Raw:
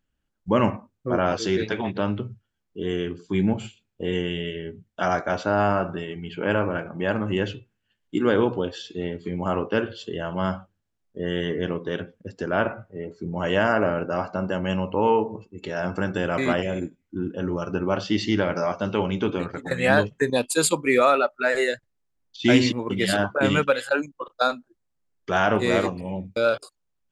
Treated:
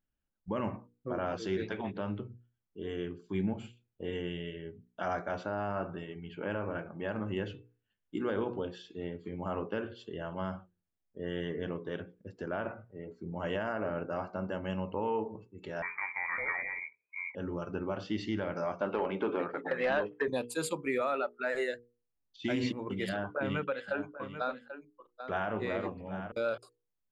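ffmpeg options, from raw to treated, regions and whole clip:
-filter_complex "[0:a]asettb=1/sr,asplit=3[a][b][c];[a]atrim=end=15.824[d];[b]atrim=start=15.82:end=17.35,asetpts=PTS-STARTPTS,afade=t=in:d=0.004:c=qsin,afade=t=out:st=1.526:d=0.004:c=qsin,asplit=2[e][f];[f]adelay=13,volume=-13dB[g];[e][g]amix=inputs=2:normalize=0,atrim=end_sample=67473,lowpass=f=2.1k:t=q:w=0.5098,lowpass=f=2.1k:t=q:w=0.6013,lowpass=f=2.1k:t=q:w=0.9,lowpass=f=2.1k:t=q:w=2.563,afreqshift=-2500[h];[c]atrim=start=17.346[i];[d][h]acrossfade=d=0.004:c1=hsin:c2=qsin[j];[j][i]acrossfade=d=0.004:c1=qsin:c2=hsin,asettb=1/sr,asplit=3[k][l][m];[k]atrim=end=18.814[n];[l]atrim=start=18.81:end=20.28,asetpts=PTS-STARTPTS,afade=t=in:d=0.004:c=qsin,afade=t=out:st=1.466:d=0.004:c=qsin,highpass=360,lowpass=2.1k,acompressor=threshold=-24dB:ratio=2:attack=3.2:release=140:knee=1:detection=peak,aeval=exprs='0.224*sin(PI/2*1.78*val(0)/0.224)':c=same[o];[m]atrim=start=20.276[p];[n][o]acrossfade=d=0.004:c1=hsin:c2=qsin[q];[q][p]acrossfade=d=0.004:c1=qsin:c2=hsin,asettb=1/sr,asplit=3[r][s][t];[r]atrim=end=23.094[u];[s]atrim=start=23.09:end=26.32,asetpts=PTS-STARTPTS,afade=t=in:d=0.004:c=qsin,afade=t=out:st=3.226:d=0.004:c=qsin,lowpass=3.4k,aecho=1:1:788:0.224,atrim=end_sample=142443[v];[t]atrim=start=26.316[w];[u][v]acrossfade=d=0.004:c1=hsin:c2=qsin[x];[x][w]acrossfade=d=0.004:c1=qsin:c2=hsin,equalizer=f=7.1k:w=0.5:g=-8,bandreject=f=60:t=h:w=6,bandreject=f=120:t=h:w=6,bandreject=f=180:t=h:w=6,bandreject=f=240:t=h:w=6,bandreject=f=300:t=h:w=6,bandreject=f=360:t=h:w=6,bandreject=f=420:t=h:w=6,bandreject=f=480:t=h:w=6,alimiter=limit=-13.5dB:level=0:latency=1:release=80,volume=-9dB"

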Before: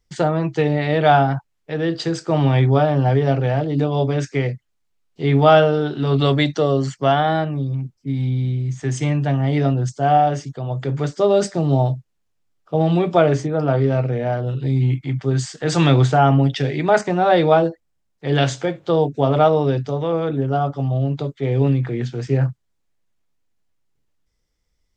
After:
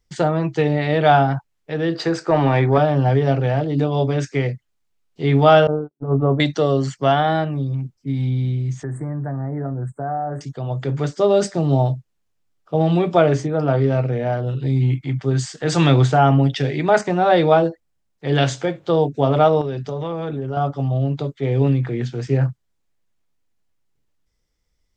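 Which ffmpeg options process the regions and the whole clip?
-filter_complex "[0:a]asettb=1/sr,asplit=3[a][b][c];[a]atrim=end=1.954[d];[b]atrim=start=1.95:end=2.78,asetpts=PTS-STARTPTS,afade=t=in:d=0.004:c=qsin,afade=t=out:st=0.826:d=0.004:c=qsin,equalizer=f=3.2k:w=4.7:g=-7,asplit=2[e][f];[f]highpass=f=720:p=1,volume=14dB,asoftclip=type=tanh:threshold=-3.5dB[g];[e][g]amix=inputs=2:normalize=0,lowpass=f=1.7k:p=1,volume=-6dB[h];[c]atrim=start=2.776[i];[d][h]acrossfade=d=0.004:c1=hsin:c2=qsin[j];[j][i]acrossfade=d=0.004:c1=qsin:c2=hsin,asettb=1/sr,asplit=3[k][l][m];[k]atrim=end=5.674[n];[l]atrim=start=5.67:end=6.4,asetpts=PTS-STARTPTS,afade=t=in:d=0.004:c=qsin,afade=t=out:st=0.726:d=0.004:c=qsin,agate=range=-58dB:threshold=-19dB:ratio=16:release=100:detection=peak,lowpass=f=1.1k:w=0.5412,lowpass=f=1.1k:w=1.3066[o];[m]atrim=start=6.396[p];[n][o]acrossfade=d=0.004:c1=hsin:c2=qsin[q];[q][p]acrossfade=d=0.004:c1=qsin:c2=hsin,asettb=1/sr,asplit=3[r][s][t];[r]atrim=end=8.834[u];[s]atrim=start=8.83:end=10.41,asetpts=PTS-STARTPTS,afade=t=in:d=0.004:c=qsin,afade=t=out:st=1.576:d=0.004:c=qsin,acompressor=threshold=-24dB:ratio=3:attack=3.2:release=140:knee=1:detection=peak,asuperstop=centerf=4100:order=12:qfactor=0.58[v];[t]atrim=start=10.406[w];[u][v]acrossfade=d=0.004:c1=hsin:c2=qsin[x];[x][w]acrossfade=d=0.004:c1=qsin:c2=hsin,asettb=1/sr,asplit=3[y][z][aa];[y]atrim=end=19.614[ab];[z]atrim=start=19.61:end=20.57,asetpts=PTS-STARTPTS,afade=t=in:d=0.004:c=qsin,afade=t=out:st=0.956:d=0.004:c=qsin,aecho=1:1:5:0.3,atrim=end_sample=42336,acompressor=threshold=-22dB:ratio=4:attack=3.2:release=140:knee=1:detection=peak[ac];[aa]atrim=start=20.566[ad];[ab][ac]acrossfade=d=0.004:c1=hsin:c2=qsin[ae];[ae][ad]acrossfade=d=0.004:c1=qsin:c2=hsin"

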